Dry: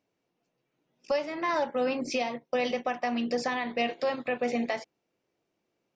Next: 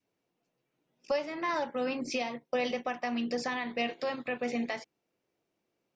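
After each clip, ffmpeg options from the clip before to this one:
ffmpeg -i in.wav -af "adynamicequalizer=threshold=0.00794:dfrequency=620:dqfactor=1.4:tfrequency=620:tqfactor=1.4:attack=5:release=100:ratio=0.375:range=2.5:mode=cutabove:tftype=bell,volume=-2dB" out.wav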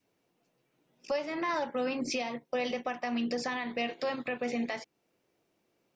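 ffmpeg -i in.wav -af "alimiter=level_in=5dB:limit=-24dB:level=0:latency=1:release=343,volume=-5dB,volume=6dB" out.wav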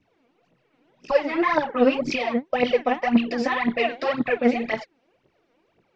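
ffmpeg -i in.wav -af "aphaser=in_gain=1:out_gain=1:delay=4.4:decay=0.76:speed=1.9:type=triangular,lowpass=3200,volume=7dB" out.wav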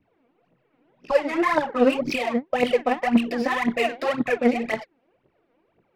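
ffmpeg -i in.wav -af "adynamicsmooth=sensitivity=8:basefreq=2900" out.wav

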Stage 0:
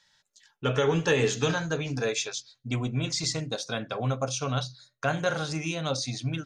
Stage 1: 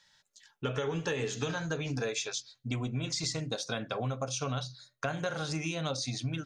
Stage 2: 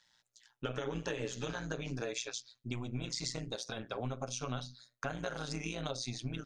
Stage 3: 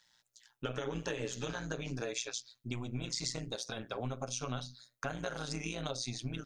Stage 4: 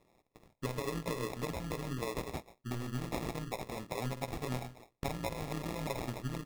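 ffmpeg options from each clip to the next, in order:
ffmpeg -i in.wav -af "acompressor=threshold=-30dB:ratio=6" out.wav
ffmpeg -i in.wav -af "tremolo=f=120:d=0.857,volume=-1.5dB" out.wav
ffmpeg -i in.wav -af "highshelf=frequency=9100:gain=7" out.wav
ffmpeg -i in.wav -af "acrusher=samples=29:mix=1:aa=0.000001,volume=1dB" out.wav

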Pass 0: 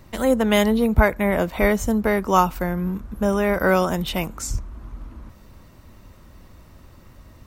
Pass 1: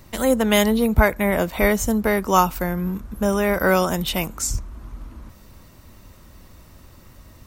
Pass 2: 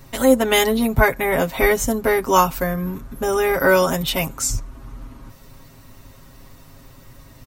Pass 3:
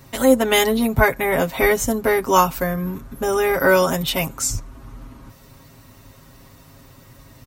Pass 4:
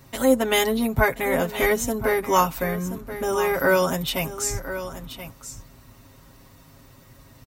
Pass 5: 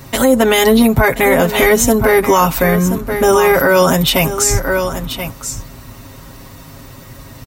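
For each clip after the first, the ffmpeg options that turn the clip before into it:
ffmpeg -i in.wav -af "highshelf=frequency=4000:gain=7.5" out.wav
ffmpeg -i in.wav -af "aecho=1:1:7.4:0.89" out.wav
ffmpeg -i in.wav -af "highpass=42" out.wav
ffmpeg -i in.wav -af "aecho=1:1:1029:0.251,volume=-4dB" out.wav
ffmpeg -i in.wav -af "alimiter=level_in=15.5dB:limit=-1dB:release=50:level=0:latency=1,volume=-1dB" out.wav

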